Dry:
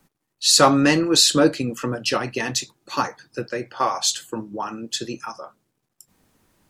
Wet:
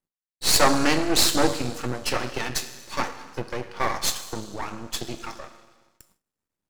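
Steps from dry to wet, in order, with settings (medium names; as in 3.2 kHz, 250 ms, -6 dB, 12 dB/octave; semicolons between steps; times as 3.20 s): Schroeder reverb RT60 1.6 s, combs from 26 ms, DRR 9.5 dB; half-wave rectifier; gate with hold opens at -48 dBFS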